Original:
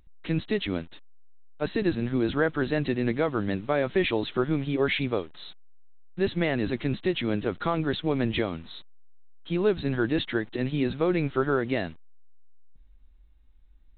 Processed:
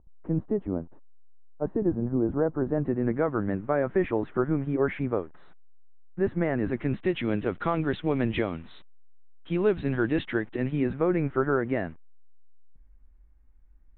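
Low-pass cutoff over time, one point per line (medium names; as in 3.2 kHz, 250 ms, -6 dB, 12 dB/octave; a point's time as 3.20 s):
low-pass 24 dB/octave
2.56 s 1 kHz
3.21 s 1.7 kHz
6.44 s 1.7 kHz
7.22 s 2.8 kHz
10.28 s 2.8 kHz
11.06 s 2 kHz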